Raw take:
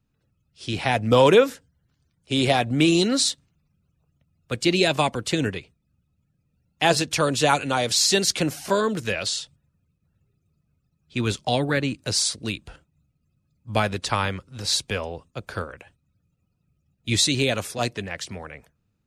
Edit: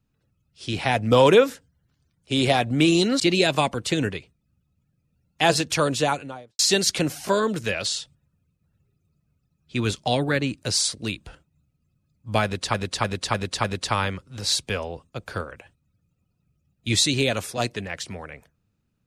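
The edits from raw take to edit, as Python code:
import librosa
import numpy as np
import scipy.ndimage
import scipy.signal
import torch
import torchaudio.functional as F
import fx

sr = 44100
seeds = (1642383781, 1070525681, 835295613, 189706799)

y = fx.studio_fade_out(x, sr, start_s=7.23, length_s=0.77)
y = fx.edit(y, sr, fx.cut(start_s=3.2, length_s=1.41),
    fx.repeat(start_s=13.85, length_s=0.3, count=5), tone=tone)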